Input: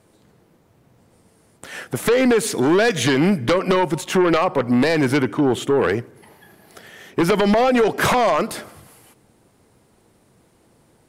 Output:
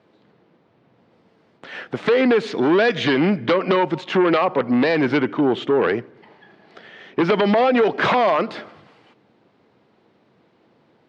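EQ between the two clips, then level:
high-pass filter 170 Hz 12 dB per octave
low-pass filter 4,100 Hz 24 dB per octave
0.0 dB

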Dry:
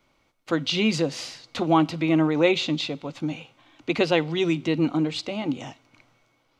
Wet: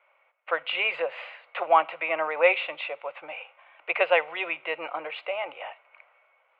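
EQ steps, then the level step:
elliptic band-pass filter 550–2,600 Hz, stop band 40 dB
parametric band 2,000 Hz +2 dB
+3.5 dB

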